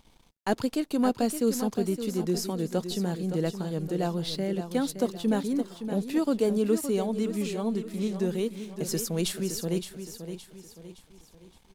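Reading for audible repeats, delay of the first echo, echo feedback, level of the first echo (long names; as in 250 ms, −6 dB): 4, 567 ms, 41%, −9.5 dB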